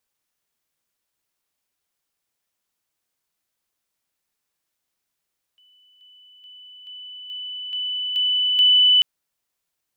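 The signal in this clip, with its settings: level ladder 2.99 kHz -53.5 dBFS, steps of 6 dB, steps 8, 0.43 s 0.00 s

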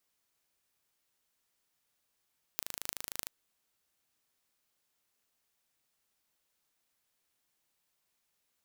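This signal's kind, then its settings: pulse train 26.5 per s, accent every 8, -5.5 dBFS 0.68 s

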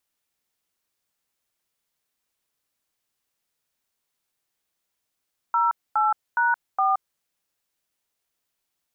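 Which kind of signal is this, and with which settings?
DTMF "08#4", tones 172 ms, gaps 243 ms, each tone -20.5 dBFS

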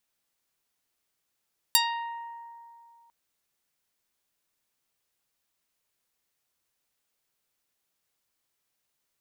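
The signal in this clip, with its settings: plucked string A#5, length 1.35 s, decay 2.53 s, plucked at 0.45, medium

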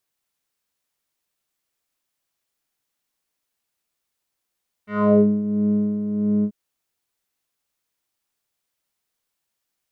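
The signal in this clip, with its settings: synth patch with tremolo G#3, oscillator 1 square, oscillator 2 square, interval +12 st, oscillator 2 level -8 dB, filter lowpass, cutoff 270 Hz, Q 2.7, filter envelope 3 oct, filter decay 0.40 s, filter sustain 5%, attack 327 ms, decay 0.23 s, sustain -9 dB, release 0.07 s, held 1.57 s, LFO 1.5 Hz, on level 6.5 dB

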